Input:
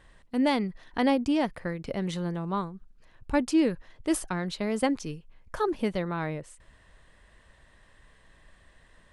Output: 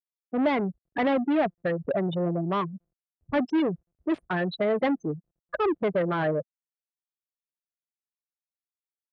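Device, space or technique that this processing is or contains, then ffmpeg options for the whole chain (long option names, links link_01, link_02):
overdrive pedal into a guitar cabinet: -filter_complex "[0:a]highshelf=frequency=3500:gain=4.5,asplit=3[link_01][link_02][link_03];[link_01]afade=type=out:start_time=1.05:duration=0.02[link_04];[link_02]highpass=frequency=130:width=0.5412,highpass=frequency=130:width=1.3066,afade=type=in:start_time=1.05:duration=0.02,afade=type=out:start_time=1.49:duration=0.02[link_05];[link_03]afade=type=in:start_time=1.49:duration=0.02[link_06];[link_04][link_05][link_06]amix=inputs=3:normalize=0,asettb=1/sr,asplit=3[link_07][link_08][link_09];[link_07]atrim=end=3.594[link_10];[link_08]atrim=start=3.59:end=4.12,asetpts=PTS-STARTPTS,afade=type=in:duration=0.004:curve=qsin,afade=type=out:start_time=0.526:duration=0.004:curve=qsin,equalizer=frequency=550:width_type=o:width=1.6:gain=-7.5[link_11];[link_09]atrim=start=4.116[link_12];[link_10][link_11]acrossfade=duration=0.004:curve1=hsin:curve2=qsin[link_13];[link_13][link_12]acrossfade=duration=0.004:curve1=qsin:curve2=hsin,afftfilt=real='re*gte(hypot(re,im),0.0708)':imag='im*gte(hypot(re,im),0.0708)':win_size=1024:overlap=0.75,asplit=2[link_14][link_15];[link_15]highpass=frequency=720:poles=1,volume=27dB,asoftclip=type=tanh:threshold=-13.5dB[link_16];[link_14][link_16]amix=inputs=2:normalize=0,lowpass=frequency=1600:poles=1,volume=-6dB,highpass=80,equalizer=frequency=220:width_type=q:width=4:gain=-4,equalizer=frequency=650:width_type=q:width=4:gain=4,equalizer=frequency=920:width_type=q:width=4:gain=-5,lowpass=frequency=3800:width=0.5412,lowpass=frequency=3800:width=1.3066,volume=-2.5dB"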